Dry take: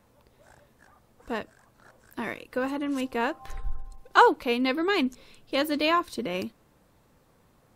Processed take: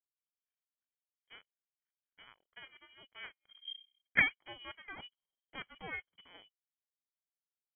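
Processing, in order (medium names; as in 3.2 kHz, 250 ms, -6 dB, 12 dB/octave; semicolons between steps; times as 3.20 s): power-law waveshaper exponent 2; Chebyshev band-stop 230–820 Hz, order 3; frequency inversion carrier 3.2 kHz; trim -3.5 dB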